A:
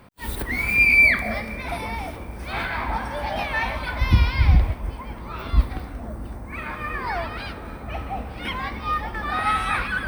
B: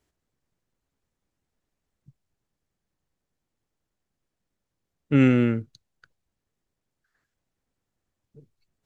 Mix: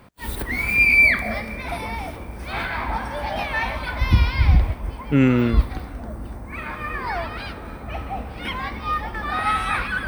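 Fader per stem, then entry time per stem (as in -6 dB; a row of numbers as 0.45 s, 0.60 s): +0.5 dB, +1.5 dB; 0.00 s, 0.00 s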